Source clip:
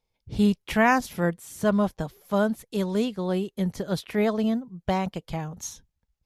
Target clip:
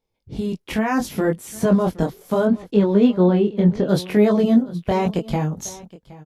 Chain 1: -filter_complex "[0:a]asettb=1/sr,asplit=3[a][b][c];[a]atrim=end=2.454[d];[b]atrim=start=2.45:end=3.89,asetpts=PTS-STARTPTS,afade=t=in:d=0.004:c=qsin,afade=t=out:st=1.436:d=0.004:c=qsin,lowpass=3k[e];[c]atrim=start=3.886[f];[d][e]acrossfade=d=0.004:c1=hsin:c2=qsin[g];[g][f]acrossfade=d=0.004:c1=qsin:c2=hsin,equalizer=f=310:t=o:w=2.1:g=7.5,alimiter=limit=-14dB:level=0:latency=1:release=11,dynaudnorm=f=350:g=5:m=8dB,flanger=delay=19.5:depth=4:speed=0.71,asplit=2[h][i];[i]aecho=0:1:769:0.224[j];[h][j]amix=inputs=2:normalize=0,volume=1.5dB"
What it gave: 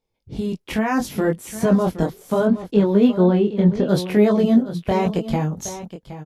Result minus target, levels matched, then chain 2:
echo-to-direct +6.5 dB
-filter_complex "[0:a]asettb=1/sr,asplit=3[a][b][c];[a]atrim=end=2.454[d];[b]atrim=start=2.45:end=3.89,asetpts=PTS-STARTPTS,afade=t=in:d=0.004:c=qsin,afade=t=out:st=1.436:d=0.004:c=qsin,lowpass=3k[e];[c]atrim=start=3.886[f];[d][e]acrossfade=d=0.004:c1=hsin:c2=qsin[g];[g][f]acrossfade=d=0.004:c1=qsin:c2=hsin,equalizer=f=310:t=o:w=2.1:g=7.5,alimiter=limit=-14dB:level=0:latency=1:release=11,dynaudnorm=f=350:g=5:m=8dB,flanger=delay=19.5:depth=4:speed=0.71,asplit=2[h][i];[i]aecho=0:1:769:0.106[j];[h][j]amix=inputs=2:normalize=0,volume=1.5dB"

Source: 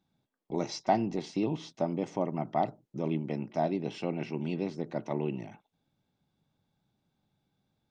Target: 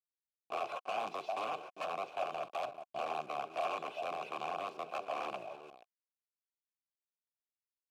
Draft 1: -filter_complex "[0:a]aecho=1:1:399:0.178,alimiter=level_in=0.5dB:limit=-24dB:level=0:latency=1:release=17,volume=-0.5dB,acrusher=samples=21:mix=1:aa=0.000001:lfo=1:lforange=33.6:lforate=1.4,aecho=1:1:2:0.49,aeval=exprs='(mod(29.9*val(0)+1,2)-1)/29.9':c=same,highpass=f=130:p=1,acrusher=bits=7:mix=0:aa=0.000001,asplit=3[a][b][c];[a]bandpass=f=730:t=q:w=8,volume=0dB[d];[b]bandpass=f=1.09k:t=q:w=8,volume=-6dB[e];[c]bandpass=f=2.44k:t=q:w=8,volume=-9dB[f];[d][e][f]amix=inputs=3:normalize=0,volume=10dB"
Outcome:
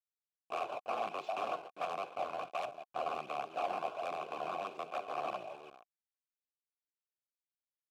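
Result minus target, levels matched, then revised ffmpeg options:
decimation with a swept rate: distortion +9 dB
-filter_complex "[0:a]aecho=1:1:399:0.178,alimiter=level_in=0.5dB:limit=-24dB:level=0:latency=1:release=17,volume=-0.5dB,acrusher=samples=7:mix=1:aa=0.000001:lfo=1:lforange=11.2:lforate=1.4,aecho=1:1:2:0.49,aeval=exprs='(mod(29.9*val(0)+1,2)-1)/29.9':c=same,highpass=f=130:p=1,acrusher=bits=7:mix=0:aa=0.000001,asplit=3[a][b][c];[a]bandpass=f=730:t=q:w=8,volume=0dB[d];[b]bandpass=f=1.09k:t=q:w=8,volume=-6dB[e];[c]bandpass=f=2.44k:t=q:w=8,volume=-9dB[f];[d][e][f]amix=inputs=3:normalize=0,volume=10dB"

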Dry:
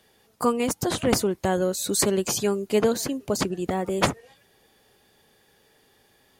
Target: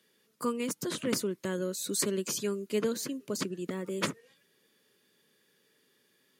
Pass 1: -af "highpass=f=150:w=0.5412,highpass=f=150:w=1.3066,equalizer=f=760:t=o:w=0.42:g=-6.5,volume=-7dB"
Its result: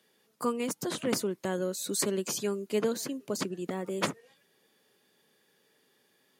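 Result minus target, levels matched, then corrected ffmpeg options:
1000 Hz band +2.5 dB
-af "highpass=f=150:w=0.5412,highpass=f=150:w=1.3066,equalizer=f=760:t=o:w=0.42:g=-18.5,volume=-7dB"

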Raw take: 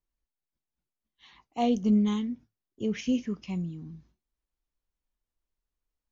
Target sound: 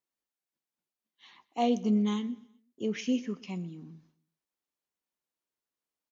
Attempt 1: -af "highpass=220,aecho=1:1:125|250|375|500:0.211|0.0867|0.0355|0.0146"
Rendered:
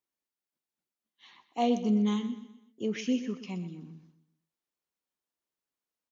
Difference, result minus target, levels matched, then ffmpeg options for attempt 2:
echo-to-direct +8.5 dB
-af "highpass=220,aecho=1:1:125|250|375:0.0794|0.0326|0.0134"

